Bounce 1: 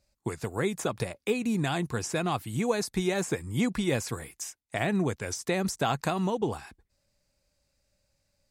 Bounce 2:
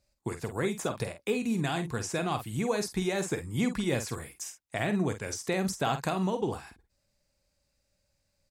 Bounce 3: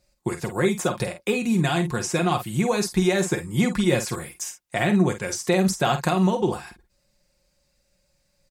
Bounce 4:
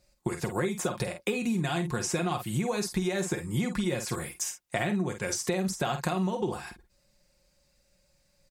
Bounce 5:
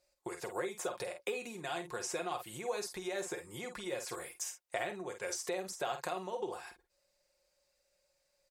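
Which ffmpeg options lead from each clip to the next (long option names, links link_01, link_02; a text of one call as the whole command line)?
ffmpeg -i in.wav -filter_complex "[0:a]asplit=2[link_01][link_02];[link_02]adelay=48,volume=-9dB[link_03];[link_01][link_03]amix=inputs=2:normalize=0,volume=-2dB" out.wav
ffmpeg -i in.wav -af "aecho=1:1:5.6:0.52,volume=6.5dB" out.wav
ffmpeg -i in.wav -af "acompressor=threshold=-26dB:ratio=6" out.wav
ffmpeg -i in.wav -af "lowshelf=frequency=310:width_type=q:width=1.5:gain=-12.5,volume=-7.5dB" out.wav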